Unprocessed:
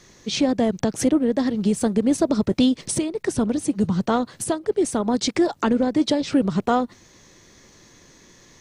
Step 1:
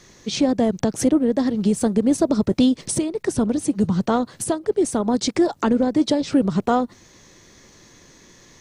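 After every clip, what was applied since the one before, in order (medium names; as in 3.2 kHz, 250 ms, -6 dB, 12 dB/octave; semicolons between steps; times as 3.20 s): dynamic bell 2.5 kHz, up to -4 dB, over -37 dBFS, Q 0.74; trim +1.5 dB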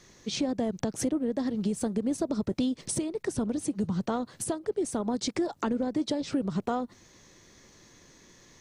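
compression 2.5:1, threshold -20 dBFS, peak gain reduction 5.5 dB; trim -6.5 dB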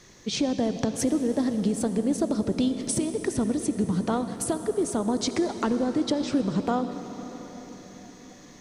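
reverberation RT60 5.1 s, pre-delay 54 ms, DRR 9 dB; trim +3.5 dB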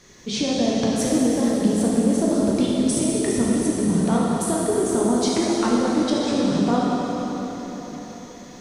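plate-style reverb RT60 3.6 s, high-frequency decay 0.95×, DRR -5 dB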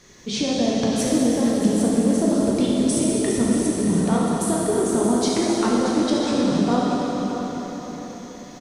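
delay 629 ms -10.5 dB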